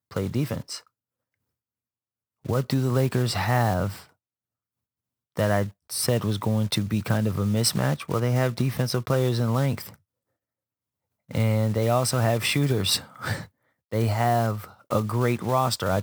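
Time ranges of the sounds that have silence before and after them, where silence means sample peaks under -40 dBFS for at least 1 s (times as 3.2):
2.45–4.03
5.37–9.94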